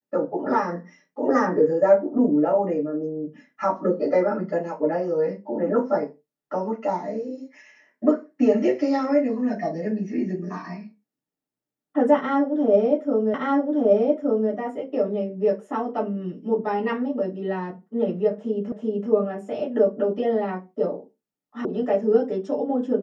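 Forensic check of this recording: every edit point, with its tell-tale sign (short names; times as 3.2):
13.34 repeat of the last 1.17 s
18.72 repeat of the last 0.38 s
21.65 sound cut off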